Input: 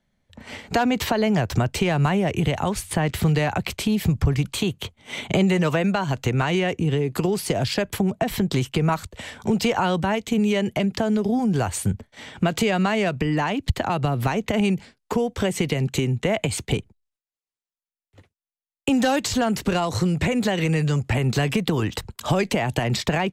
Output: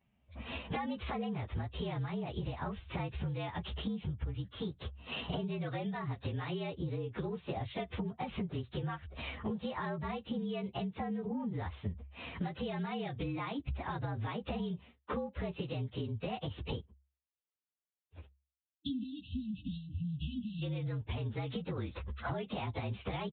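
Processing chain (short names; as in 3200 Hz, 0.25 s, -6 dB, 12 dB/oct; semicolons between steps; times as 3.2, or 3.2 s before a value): inharmonic rescaling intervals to 113%; HPF 52 Hz; bell 68 Hz +13.5 dB 0.27 oct; compressor 16:1, threshold -34 dBFS, peak gain reduction 20.5 dB; downsampling 8000 Hz; spectral delete 18.43–20.63, 320–2600 Hz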